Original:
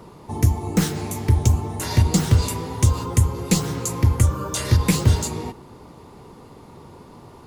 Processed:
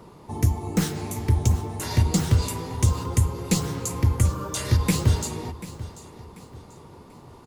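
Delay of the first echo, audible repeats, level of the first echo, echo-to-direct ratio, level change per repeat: 739 ms, 3, −16.0 dB, −15.5 dB, −9.0 dB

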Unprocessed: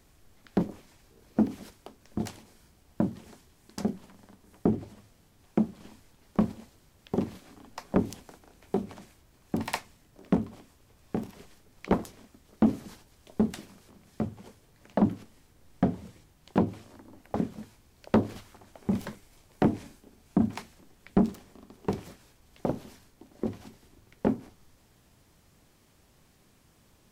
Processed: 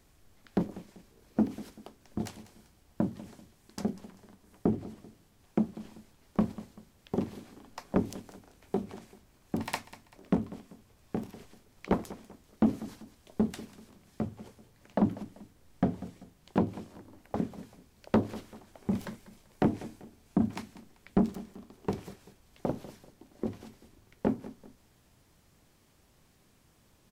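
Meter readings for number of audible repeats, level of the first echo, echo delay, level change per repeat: 2, −17.0 dB, 194 ms, −8.5 dB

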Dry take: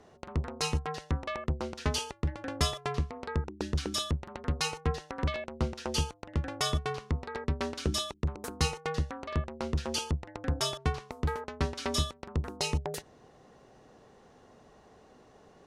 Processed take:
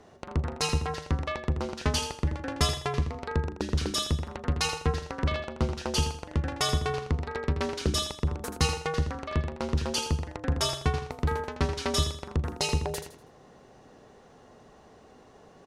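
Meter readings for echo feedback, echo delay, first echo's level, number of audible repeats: 32%, 81 ms, −8.5 dB, 3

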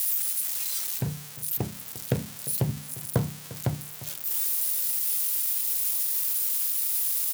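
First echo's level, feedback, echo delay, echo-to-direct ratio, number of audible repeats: −17.5 dB, repeats not evenly spaced, 351 ms, −17.5 dB, 1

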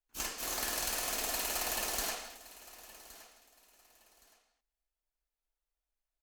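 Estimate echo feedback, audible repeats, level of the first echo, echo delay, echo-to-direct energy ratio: 27%, 2, −18.0 dB, 1,118 ms, −17.5 dB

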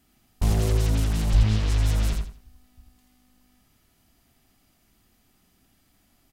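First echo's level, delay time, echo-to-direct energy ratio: −4.5 dB, 84 ms, −4.0 dB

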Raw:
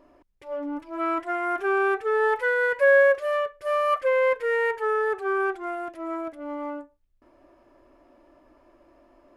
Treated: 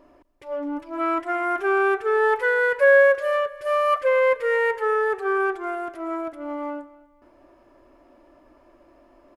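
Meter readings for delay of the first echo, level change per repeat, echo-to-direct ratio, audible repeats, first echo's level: 248 ms, −9.5 dB, −19.5 dB, 2, −20.0 dB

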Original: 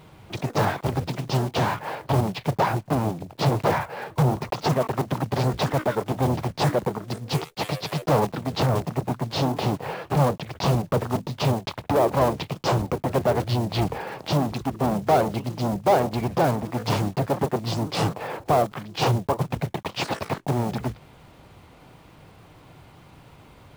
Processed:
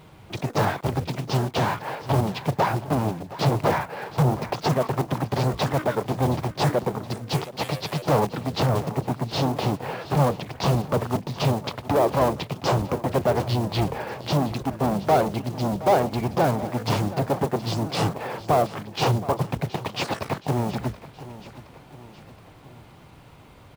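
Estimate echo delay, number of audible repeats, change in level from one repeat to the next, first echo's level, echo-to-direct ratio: 721 ms, 3, −5.5 dB, −16.5 dB, −15.0 dB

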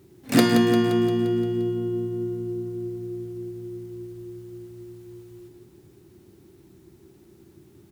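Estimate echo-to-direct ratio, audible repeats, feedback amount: −7.0 dB, 6, 60%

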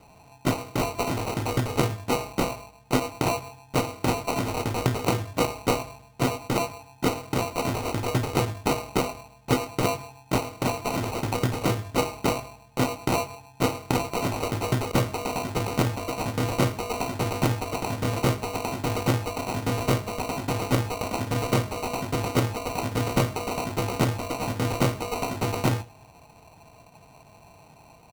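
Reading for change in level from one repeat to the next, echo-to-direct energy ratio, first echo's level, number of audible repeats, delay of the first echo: repeats not evenly spaced, −22.0 dB, −22.0 dB, 1, 107 ms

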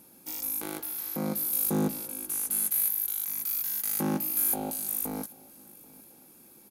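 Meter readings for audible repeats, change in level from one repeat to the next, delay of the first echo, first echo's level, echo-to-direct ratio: 2, −8.0 dB, 786 ms, −23.0 dB, −22.5 dB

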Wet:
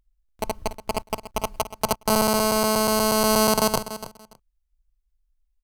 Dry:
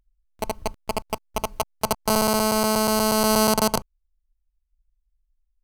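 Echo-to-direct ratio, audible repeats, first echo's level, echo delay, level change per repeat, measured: −13.0 dB, 2, −13.0 dB, 288 ms, −15.0 dB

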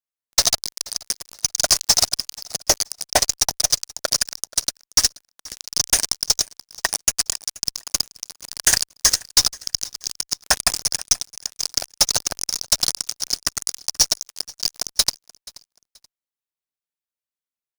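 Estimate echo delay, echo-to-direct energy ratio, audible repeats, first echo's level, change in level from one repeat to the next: 480 ms, −21.5 dB, 2, −22.0 dB, −11.5 dB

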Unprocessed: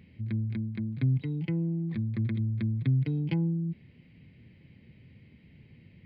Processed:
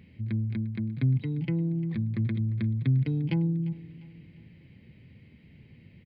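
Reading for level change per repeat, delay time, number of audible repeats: −7.0 dB, 350 ms, 3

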